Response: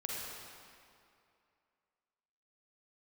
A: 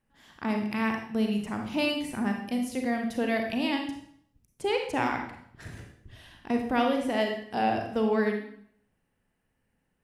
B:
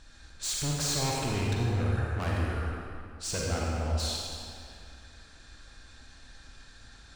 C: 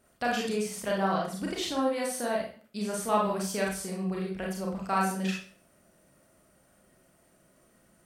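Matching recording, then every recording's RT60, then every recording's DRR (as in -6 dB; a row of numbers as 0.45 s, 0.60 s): B; 0.65 s, 2.5 s, 0.45 s; 2.5 dB, -4.0 dB, -3.5 dB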